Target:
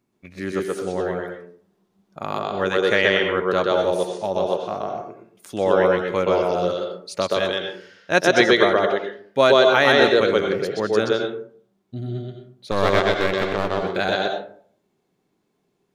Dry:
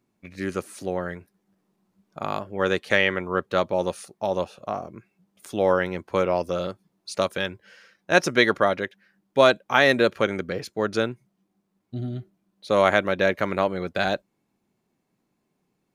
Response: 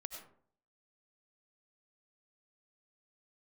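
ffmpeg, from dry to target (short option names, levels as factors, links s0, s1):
-filter_complex "[0:a]asettb=1/sr,asplit=3[s0][s1][s2];[s0]atrim=end=12.714[s3];[s1]atrim=start=12.71:end=13.83,asetpts=PTS-STARTPTS,afade=t=in:d=0.004:c=qsin,afade=t=out:st=1.116:d=0.004:c=qsin,aeval=exprs='max(val(0),0)':c=same[s4];[s2]atrim=start=13.826[s5];[s3][s4]acrossfade=d=0.004:c1=hsin:c2=qsin[s6];[s6][s5]acrossfade=d=0.004:c1=qsin:c2=hsin,asplit=2[s7][s8];[s8]highpass=140,equalizer=f=230:t=q:w=4:g=-5,equalizer=f=410:t=q:w=4:g=9,equalizer=f=2400:t=q:w=4:g=-4,equalizer=f=3400:t=q:w=4:g=6,lowpass=f=7600:w=0.5412,lowpass=f=7600:w=1.3066[s9];[1:a]atrim=start_sample=2205,asetrate=48510,aresample=44100,adelay=126[s10];[s9][s10]afir=irnorm=-1:irlink=0,volume=1.68[s11];[s7][s11]amix=inputs=2:normalize=0"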